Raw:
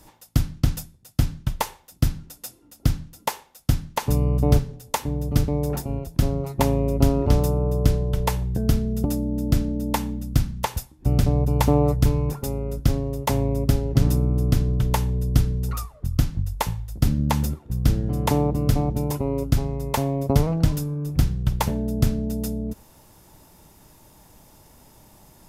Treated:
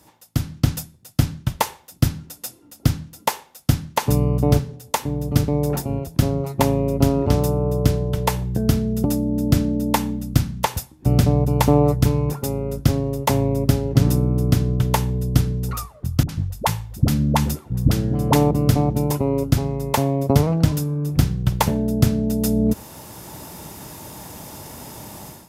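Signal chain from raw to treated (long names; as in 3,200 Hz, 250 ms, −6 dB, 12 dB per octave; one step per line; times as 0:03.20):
high-pass filter 83 Hz 12 dB per octave
automatic gain control gain up to 16.5 dB
0:16.23–0:18.51: all-pass dispersion highs, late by 59 ms, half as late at 470 Hz
level −1 dB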